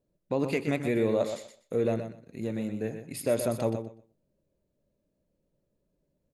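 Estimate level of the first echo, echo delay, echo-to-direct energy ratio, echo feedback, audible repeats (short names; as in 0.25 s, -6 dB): -8.5 dB, 0.123 s, -8.5 dB, 18%, 2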